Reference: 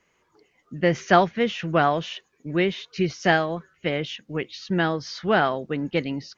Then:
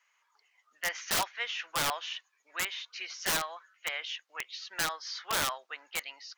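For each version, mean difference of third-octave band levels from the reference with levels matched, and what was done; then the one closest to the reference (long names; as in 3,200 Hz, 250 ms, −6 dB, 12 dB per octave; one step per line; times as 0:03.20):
12.5 dB: high-pass filter 900 Hz 24 dB per octave
wrap-around overflow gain 19.5 dB
level −3 dB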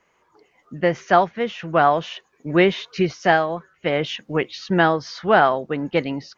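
2.5 dB: parametric band 870 Hz +8 dB 1.9 octaves
automatic gain control
level −1 dB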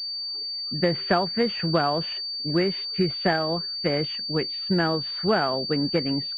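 5.0 dB: downward compressor 6 to 1, threshold −21 dBFS, peak gain reduction 10.5 dB
switching amplifier with a slow clock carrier 4,600 Hz
level +3 dB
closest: second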